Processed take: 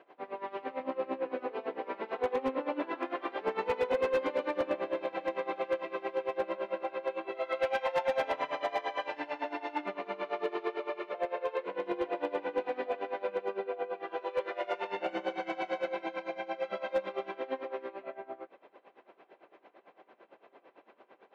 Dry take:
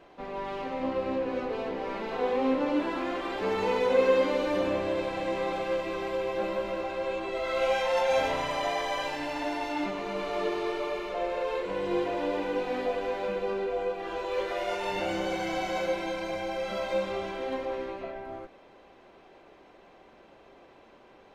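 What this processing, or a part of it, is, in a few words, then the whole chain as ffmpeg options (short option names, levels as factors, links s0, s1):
helicopter radio: -af "highpass=330,lowpass=2600,aeval=exprs='val(0)*pow(10,-19*(0.5-0.5*cos(2*PI*8.9*n/s))/20)':c=same,asoftclip=type=hard:threshold=0.0562,volume=1.26"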